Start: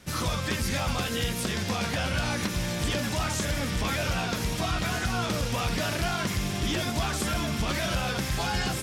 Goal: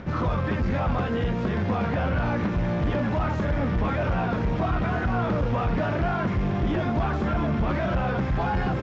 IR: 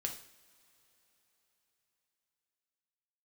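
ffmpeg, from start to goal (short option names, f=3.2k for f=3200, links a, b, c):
-af "aresample=16000,asoftclip=type=tanh:threshold=-27dB,aresample=44100,acompressor=mode=upward:threshold=-40dB:ratio=2.5,lowpass=1.3k,volume=8.5dB"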